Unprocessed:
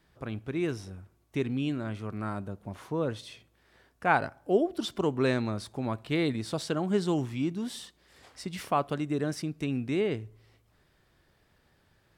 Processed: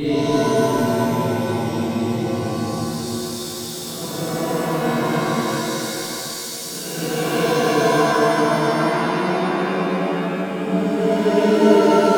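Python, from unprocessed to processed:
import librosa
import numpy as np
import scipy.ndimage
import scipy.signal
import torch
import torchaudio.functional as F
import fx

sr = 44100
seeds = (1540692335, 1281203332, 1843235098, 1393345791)

p1 = fx.level_steps(x, sr, step_db=9)
p2 = x + (p1 * librosa.db_to_amplitude(2.5))
p3 = fx.paulstretch(p2, sr, seeds[0], factor=17.0, window_s=0.1, from_s=6.28)
p4 = p3 + 10.0 ** (-14.5 / 20.0) * np.pad(p3, (int(713 * sr / 1000.0), 0))[:len(p3)]
p5 = fx.rev_shimmer(p4, sr, seeds[1], rt60_s=2.4, semitones=7, shimmer_db=-2, drr_db=-8.5)
y = p5 * librosa.db_to_amplitude(-7.0)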